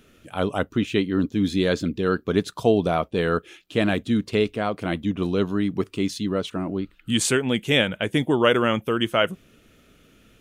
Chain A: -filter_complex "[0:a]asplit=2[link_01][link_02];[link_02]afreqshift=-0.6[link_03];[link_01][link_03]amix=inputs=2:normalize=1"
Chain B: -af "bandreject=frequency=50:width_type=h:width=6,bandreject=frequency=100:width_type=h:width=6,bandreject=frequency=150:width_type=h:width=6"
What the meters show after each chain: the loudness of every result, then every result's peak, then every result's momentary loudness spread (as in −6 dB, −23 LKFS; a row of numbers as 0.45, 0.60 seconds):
−26.5, −23.5 LKFS; −8.0, −4.0 dBFS; 8, 7 LU